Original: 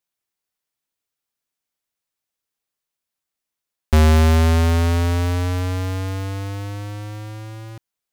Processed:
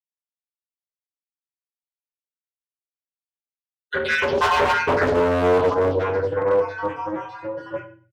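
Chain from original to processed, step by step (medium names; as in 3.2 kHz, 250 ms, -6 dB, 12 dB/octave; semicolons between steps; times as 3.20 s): random holes in the spectrogram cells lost 65%; bit crusher 11-bit; spectral gate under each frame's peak -25 dB strong; high-pass 92 Hz 12 dB/octave; compressor with a negative ratio -23 dBFS, ratio -0.5; three-band isolator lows -21 dB, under 350 Hz, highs -23 dB, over 3.2 kHz; reverberation RT60 0.45 s, pre-delay 3 ms, DRR -11.5 dB; 5.74–7.74 s: flange 1.2 Hz, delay 7.1 ms, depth 9.9 ms, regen -79%; overload inside the chain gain 16 dB; comb 2 ms, depth 62%; loudspeaker Doppler distortion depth 0.51 ms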